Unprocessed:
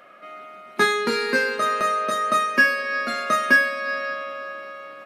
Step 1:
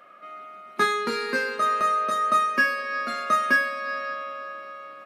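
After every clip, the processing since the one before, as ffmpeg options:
-af "equalizer=f=1.2k:w=7.4:g=7,volume=-5dB"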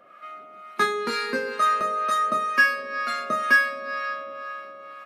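-filter_complex "[0:a]acrossover=split=740[a][b];[a]aeval=exprs='val(0)*(1-0.7/2+0.7/2*cos(2*PI*2.1*n/s))':c=same[c];[b]aeval=exprs='val(0)*(1-0.7/2-0.7/2*cos(2*PI*2.1*n/s))':c=same[d];[c][d]amix=inputs=2:normalize=0,volume=3.5dB"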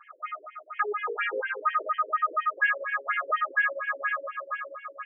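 -filter_complex "[0:a]asplit=2[a][b];[b]highpass=f=720:p=1,volume=22dB,asoftclip=type=tanh:threshold=-7.5dB[c];[a][c]amix=inputs=2:normalize=0,lowpass=f=6.3k:p=1,volume=-6dB,afftfilt=real='re*between(b*sr/1024,370*pow(2400/370,0.5+0.5*sin(2*PI*4.2*pts/sr))/1.41,370*pow(2400/370,0.5+0.5*sin(2*PI*4.2*pts/sr))*1.41)':imag='im*between(b*sr/1024,370*pow(2400/370,0.5+0.5*sin(2*PI*4.2*pts/sr))/1.41,370*pow(2400/370,0.5+0.5*sin(2*PI*4.2*pts/sr))*1.41)':win_size=1024:overlap=0.75,volume=-7dB"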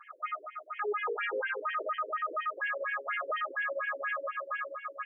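-af "alimiter=level_in=2.5dB:limit=-24dB:level=0:latency=1:release=12,volume=-2.5dB"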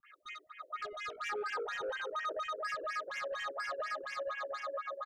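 -filter_complex "[0:a]asoftclip=type=tanh:threshold=-33dB,acrossover=split=320|1700[a][b][c];[c]adelay=30[d];[b]adelay=500[e];[a][e][d]amix=inputs=3:normalize=0,volume=1dB"

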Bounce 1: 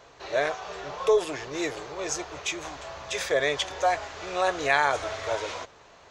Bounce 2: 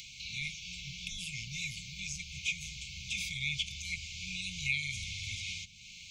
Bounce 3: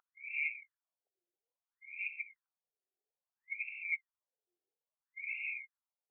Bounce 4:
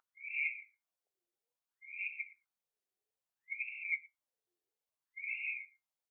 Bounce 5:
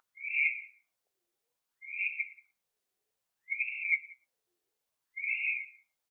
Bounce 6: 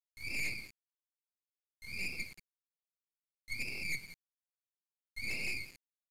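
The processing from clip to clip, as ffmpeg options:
-filter_complex "[0:a]acrossover=split=2700[a][b];[b]acompressor=threshold=-40dB:ratio=4:attack=1:release=60[c];[a][c]amix=inputs=2:normalize=0,afftfilt=real='re*(1-between(b*sr/4096,230,2100))':imag='im*(1-between(b*sr/4096,230,2100))':win_size=4096:overlap=0.75,acrossover=split=370[d][e];[e]acompressor=mode=upward:threshold=-42dB:ratio=2.5[f];[d][f]amix=inputs=2:normalize=0,volume=2dB"
-af "afftfilt=real='re*between(b*sr/1024,520*pow(2000/520,0.5+0.5*sin(2*PI*0.6*pts/sr))/1.41,520*pow(2000/520,0.5+0.5*sin(2*PI*0.6*pts/sr))*1.41)':imag='im*between(b*sr/1024,520*pow(2000/520,0.5+0.5*sin(2*PI*0.6*pts/sr))/1.41,520*pow(2000/520,0.5+0.5*sin(2*PI*0.6*pts/sr))*1.41)':win_size=1024:overlap=0.75,volume=4.5dB"
-af "aecho=1:1:113:0.0668,flanger=delay=7.5:depth=2:regen=75:speed=0.52:shape=sinusoidal,volume=4.5dB"
-filter_complex "[0:a]asplit=2[a][b];[b]adelay=180.8,volume=-23dB,highshelf=f=4k:g=-4.07[c];[a][c]amix=inputs=2:normalize=0,volume=7dB"
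-af "asoftclip=type=tanh:threshold=-31dB,acrusher=bits=6:dc=4:mix=0:aa=0.000001,aresample=32000,aresample=44100,volume=2.5dB"

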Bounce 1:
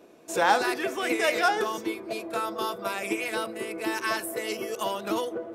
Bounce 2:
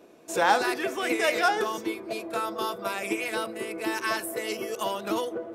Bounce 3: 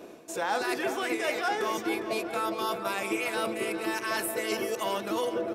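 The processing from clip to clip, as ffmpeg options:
-af anull
-filter_complex "[0:a]areverse,acompressor=threshold=-35dB:ratio=6,areverse,asplit=2[a][b];[b]adelay=407,lowpass=f=4.6k:p=1,volume=-10dB,asplit=2[c][d];[d]adelay=407,lowpass=f=4.6k:p=1,volume=0.52,asplit=2[e][f];[f]adelay=407,lowpass=f=4.6k:p=1,volume=0.52,asplit=2[g][h];[h]adelay=407,lowpass=f=4.6k:p=1,volume=0.52,asplit=2[i][j];[j]adelay=407,lowpass=f=4.6k:p=1,volume=0.52,asplit=2[k][l];[l]adelay=407,lowpass=f=4.6k:p=1,volume=0.52[m];[a][c][e][g][i][k][m]amix=inputs=7:normalize=0,volume=7.5dB"

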